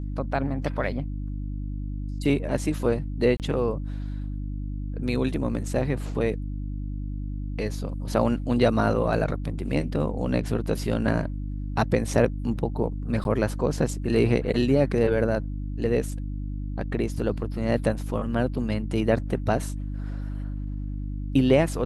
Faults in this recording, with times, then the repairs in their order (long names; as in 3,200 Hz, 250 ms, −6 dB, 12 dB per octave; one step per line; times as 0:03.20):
mains hum 50 Hz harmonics 6 −31 dBFS
0:03.37–0:03.40: drop-out 28 ms
0:13.24–0:13.25: drop-out 11 ms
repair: hum removal 50 Hz, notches 6
repair the gap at 0:03.37, 28 ms
repair the gap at 0:13.24, 11 ms